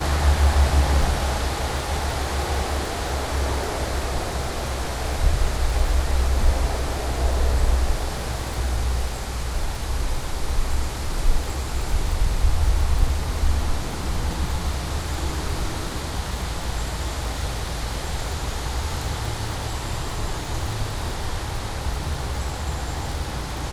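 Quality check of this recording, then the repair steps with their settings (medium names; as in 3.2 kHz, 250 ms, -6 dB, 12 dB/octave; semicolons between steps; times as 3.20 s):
crackle 39 per s -29 dBFS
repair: de-click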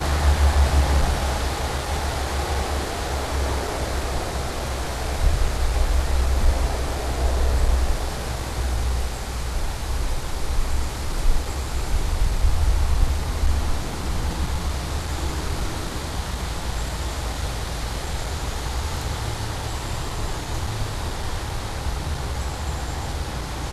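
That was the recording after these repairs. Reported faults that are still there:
nothing left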